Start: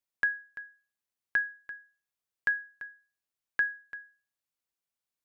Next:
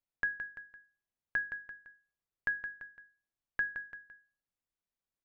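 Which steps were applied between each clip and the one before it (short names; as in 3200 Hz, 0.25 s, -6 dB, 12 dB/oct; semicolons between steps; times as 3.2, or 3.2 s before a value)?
tilt -2.5 dB/oct; notches 50/100/150/200/250/300/350/400/450 Hz; echo 0.168 s -9 dB; gain -3.5 dB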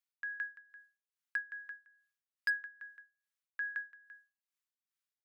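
HPF 1200 Hz 24 dB/oct; tremolo 2.4 Hz, depth 77%; hard clip -29 dBFS, distortion -17 dB; gain +2.5 dB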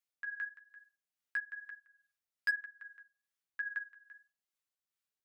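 flange 1.1 Hz, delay 8 ms, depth 5.5 ms, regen +16%; gain +3 dB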